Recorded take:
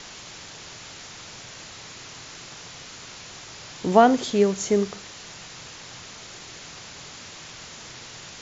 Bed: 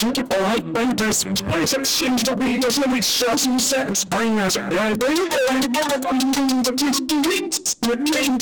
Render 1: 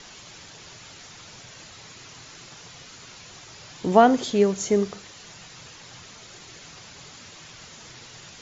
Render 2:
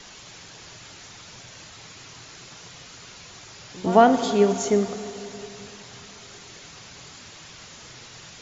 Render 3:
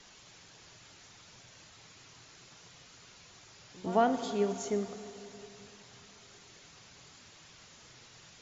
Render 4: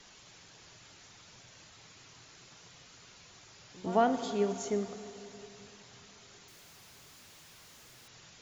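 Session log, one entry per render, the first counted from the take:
denoiser 6 dB, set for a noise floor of -42 dBFS
pre-echo 0.101 s -17 dB; plate-style reverb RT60 3.2 s, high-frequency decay 0.95×, DRR 8.5 dB
gain -11.5 dB
6.48–8.08 infinite clipping

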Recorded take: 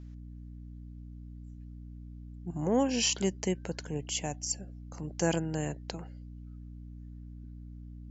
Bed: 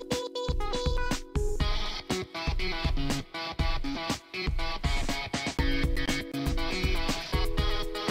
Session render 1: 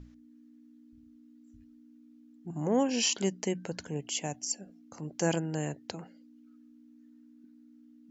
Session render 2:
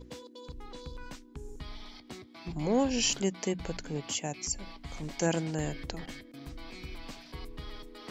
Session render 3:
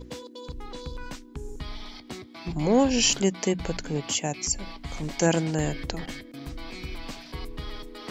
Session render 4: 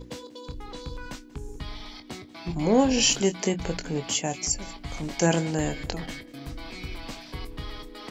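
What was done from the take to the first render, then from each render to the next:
notches 60/120/180 Hz
add bed -15 dB
gain +6.5 dB
doubler 23 ms -10 dB; echo 0.187 s -21.5 dB

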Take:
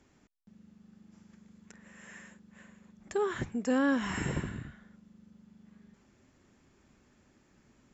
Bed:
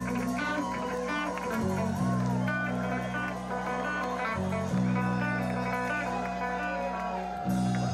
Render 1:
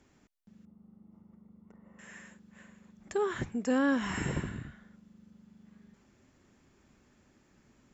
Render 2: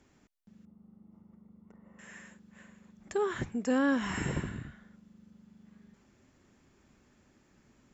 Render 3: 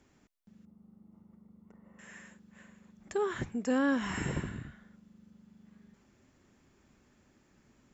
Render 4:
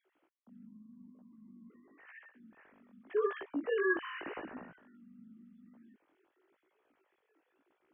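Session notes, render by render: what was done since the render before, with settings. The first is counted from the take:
0.65–1.99 polynomial smoothing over 65 samples
nothing audible
gain -1 dB
sine-wave speech; chorus 0.89 Hz, delay 15.5 ms, depth 5.6 ms

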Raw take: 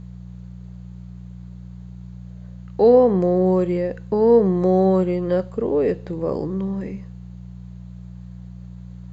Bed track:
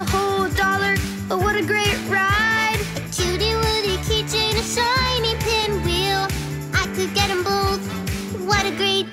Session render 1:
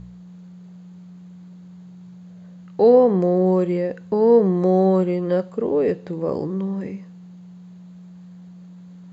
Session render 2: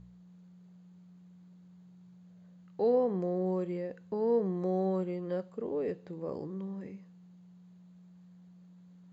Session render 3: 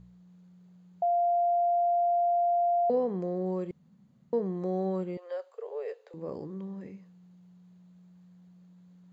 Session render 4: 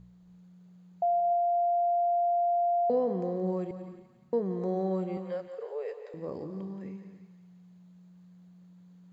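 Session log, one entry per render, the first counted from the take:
de-hum 60 Hz, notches 2
gain -14 dB
1.02–2.9 bleep 696 Hz -22.5 dBFS; 3.71–4.33 room tone; 5.17–6.14 steep high-pass 430 Hz 72 dB/oct
thinning echo 0.175 s, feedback 58%, high-pass 770 Hz, level -10 dB; non-linear reverb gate 0.33 s rising, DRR 11 dB

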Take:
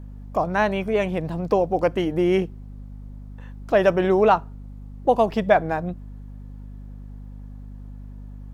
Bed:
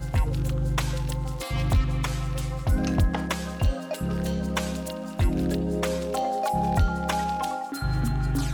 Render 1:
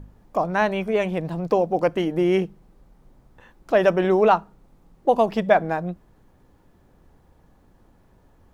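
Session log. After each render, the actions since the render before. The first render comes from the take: de-hum 50 Hz, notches 5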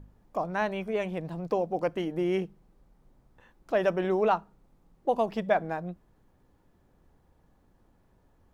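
gain -8 dB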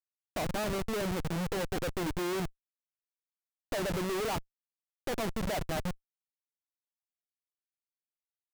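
Schmitt trigger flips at -34.5 dBFS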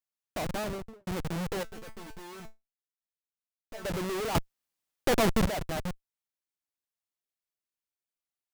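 0.56–1.07 studio fade out; 1.63–3.85 resonator 220 Hz, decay 0.19 s, mix 90%; 4.35–5.46 gain +9 dB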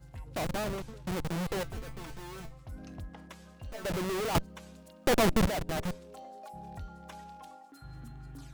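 add bed -21 dB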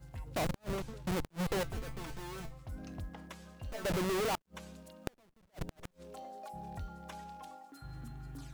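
flipped gate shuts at -26 dBFS, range -42 dB; companded quantiser 8-bit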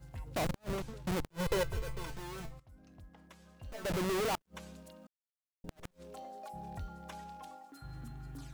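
1.31–2.1 comb 2 ms, depth 66%; 2.6–4.05 fade in quadratic, from -14.5 dB; 5.07–5.64 mute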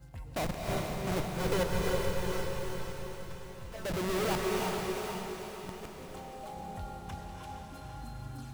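diffused feedback echo 0.465 s, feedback 51%, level -3.5 dB; non-linear reverb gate 0.37 s rising, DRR 1 dB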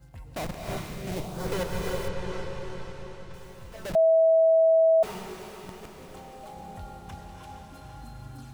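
0.76–1.46 bell 460 Hz -> 2800 Hz -10 dB; 2.08–3.34 air absorption 78 m; 3.95–5.03 bleep 650 Hz -16 dBFS

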